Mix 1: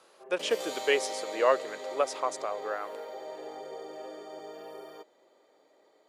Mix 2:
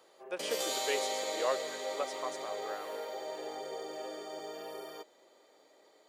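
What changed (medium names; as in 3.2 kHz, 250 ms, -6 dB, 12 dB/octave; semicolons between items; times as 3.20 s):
speech -9.0 dB; background: add treble shelf 2.6 kHz +8 dB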